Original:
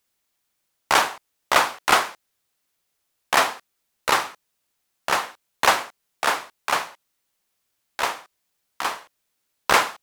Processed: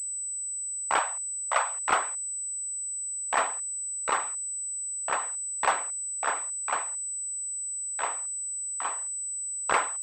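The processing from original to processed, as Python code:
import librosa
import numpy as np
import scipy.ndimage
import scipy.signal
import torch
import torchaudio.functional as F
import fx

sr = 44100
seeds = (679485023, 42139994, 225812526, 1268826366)

y = fx.envelope_sharpen(x, sr, power=1.5)
y = fx.ellip_bandstop(y, sr, low_hz=100.0, high_hz=540.0, order=3, stop_db=40, at=(0.99, 1.75))
y = fx.pwm(y, sr, carrier_hz=8000.0)
y = y * 10.0 ** (-7.5 / 20.0)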